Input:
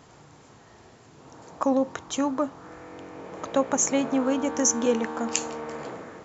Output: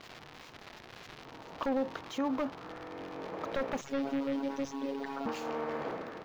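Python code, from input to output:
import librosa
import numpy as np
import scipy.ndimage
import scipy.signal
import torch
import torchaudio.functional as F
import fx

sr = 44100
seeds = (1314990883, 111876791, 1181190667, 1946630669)

p1 = x + 0.5 * 10.0 ** (-19.0 / 20.0) * np.diff(np.sign(x), prepend=np.sign(x[:1]))
p2 = fx.low_shelf(p1, sr, hz=140.0, db=-10.0)
p3 = fx.over_compress(p2, sr, threshold_db=-31.0, ratio=-0.5)
p4 = p2 + (p3 * librosa.db_to_amplitude(0.0))
p5 = fx.robotise(p4, sr, hz=138.0, at=(3.81, 5.26))
p6 = 10.0 ** (-17.5 / 20.0) * (np.abs((p5 / 10.0 ** (-17.5 / 20.0) + 3.0) % 4.0 - 2.0) - 1.0)
p7 = fx.air_absorb(p6, sr, metres=270.0)
y = p7 * librosa.db_to_amplitude(-6.0)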